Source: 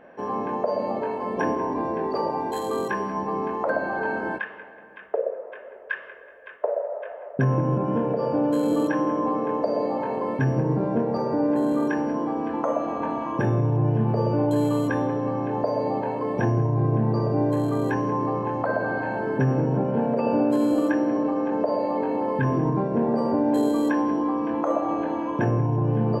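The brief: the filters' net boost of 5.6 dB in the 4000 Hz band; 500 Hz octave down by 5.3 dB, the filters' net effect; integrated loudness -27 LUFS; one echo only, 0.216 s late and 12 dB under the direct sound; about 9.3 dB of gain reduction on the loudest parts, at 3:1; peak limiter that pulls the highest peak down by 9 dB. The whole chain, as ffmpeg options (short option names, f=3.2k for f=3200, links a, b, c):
-af "equalizer=f=500:t=o:g=-6.5,equalizer=f=4k:t=o:g=7,acompressor=threshold=-32dB:ratio=3,alimiter=level_in=4dB:limit=-24dB:level=0:latency=1,volume=-4dB,aecho=1:1:216:0.251,volume=9.5dB"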